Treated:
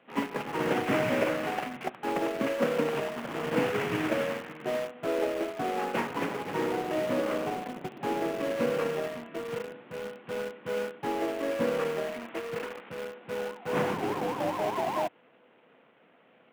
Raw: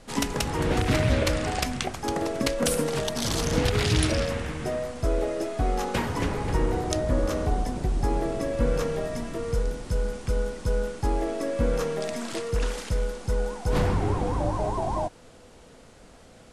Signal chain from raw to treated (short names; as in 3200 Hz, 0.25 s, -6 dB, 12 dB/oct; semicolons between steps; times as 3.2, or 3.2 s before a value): CVSD 16 kbps; Bessel high-pass 240 Hz, order 8; in parallel at -11 dB: bit-crush 5-bit; on the sum: upward expander 1.5:1, over -38 dBFS